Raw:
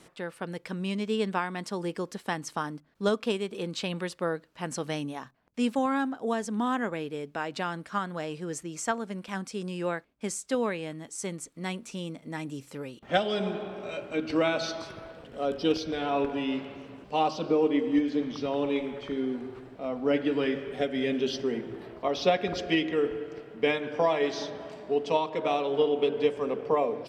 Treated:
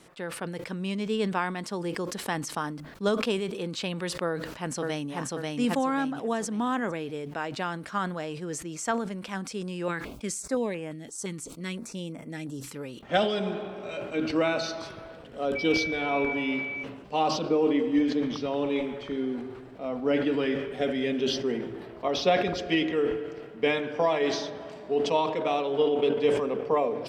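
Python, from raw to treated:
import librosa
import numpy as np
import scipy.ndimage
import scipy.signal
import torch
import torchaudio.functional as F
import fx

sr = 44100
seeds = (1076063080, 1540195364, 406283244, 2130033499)

y = fx.echo_throw(x, sr, start_s=4.28, length_s=0.83, ms=540, feedback_pct=35, wet_db=-1.5)
y = fx.filter_held_notch(y, sr, hz=5.8, low_hz=610.0, high_hz=4000.0, at=(9.88, 12.76))
y = fx.notch(y, sr, hz=3300.0, q=12.0, at=(14.37, 14.79))
y = fx.dmg_tone(y, sr, hz=2300.0, level_db=-32.0, at=(15.55, 16.82), fade=0.02)
y = fx.sustainer(y, sr, db_per_s=57.0)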